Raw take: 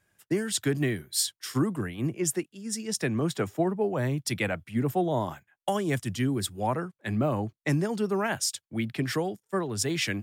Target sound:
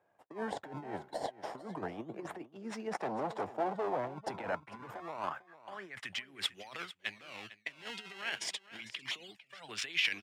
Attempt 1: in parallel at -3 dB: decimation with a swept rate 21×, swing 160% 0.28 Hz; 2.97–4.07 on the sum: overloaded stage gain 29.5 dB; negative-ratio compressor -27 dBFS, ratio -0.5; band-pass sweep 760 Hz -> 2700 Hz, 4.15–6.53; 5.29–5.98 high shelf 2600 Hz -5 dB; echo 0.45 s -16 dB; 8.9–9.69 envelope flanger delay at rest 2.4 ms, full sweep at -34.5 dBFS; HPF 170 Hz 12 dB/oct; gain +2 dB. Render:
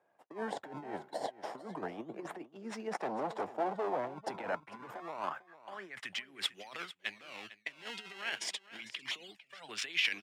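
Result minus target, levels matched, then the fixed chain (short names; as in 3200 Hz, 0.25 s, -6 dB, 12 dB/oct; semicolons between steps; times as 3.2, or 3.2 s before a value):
125 Hz band -4.0 dB
in parallel at -3 dB: decimation with a swept rate 21×, swing 160% 0.28 Hz; 2.97–4.07 on the sum: overloaded stage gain 29.5 dB; negative-ratio compressor -27 dBFS, ratio -0.5; band-pass sweep 760 Hz -> 2700 Hz, 4.15–6.53; 5.29–5.98 high shelf 2600 Hz -5 dB; echo 0.45 s -16 dB; 8.9–9.69 envelope flanger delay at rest 2.4 ms, full sweep at -34.5 dBFS; gain +2 dB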